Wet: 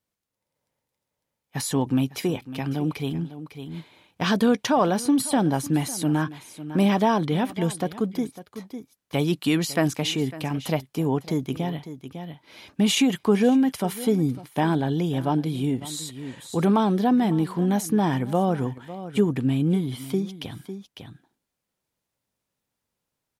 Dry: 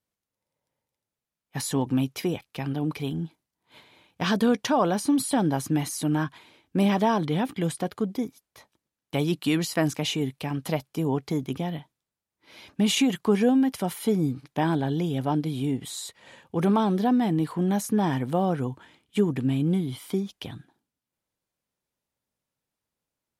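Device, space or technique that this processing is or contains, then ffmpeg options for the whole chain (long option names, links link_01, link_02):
ducked delay: -filter_complex "[0:a]asplit=3[link_01][link_02][link_03];[link_02]adelay=552,volume=-3dB[link_04];[link_03]apad=whole_len=1056199[link_05];[link_04][link_05]sidechaincompress=threshold=-40dB:ratio=4:attack=23:release=869[link_06];[link_01][link_06]amix=inputs=2:normalize=0,volume=2dB"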